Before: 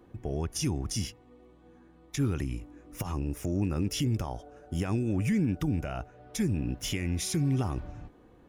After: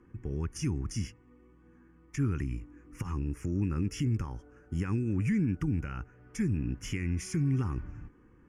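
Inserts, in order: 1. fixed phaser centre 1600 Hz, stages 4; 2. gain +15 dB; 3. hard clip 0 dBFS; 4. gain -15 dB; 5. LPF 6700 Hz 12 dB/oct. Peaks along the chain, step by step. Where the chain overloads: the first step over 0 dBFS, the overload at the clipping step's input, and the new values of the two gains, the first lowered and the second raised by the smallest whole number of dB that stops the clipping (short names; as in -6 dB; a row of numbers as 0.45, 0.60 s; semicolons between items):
-20.5, -5.5, -5.5, -20.5, -20.5 dBFS; no overload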